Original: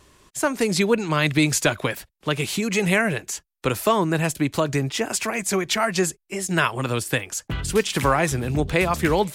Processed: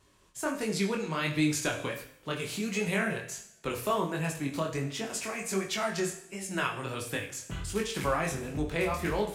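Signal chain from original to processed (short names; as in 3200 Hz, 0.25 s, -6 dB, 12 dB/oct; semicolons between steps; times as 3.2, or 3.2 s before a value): two-slope reverb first 0.66 s, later 2.1 s, from -26 dB, DRR 4.5 dB; chorus 1.4 Hz, delay 19 ms, depth 5.9 ms; gain -8 dB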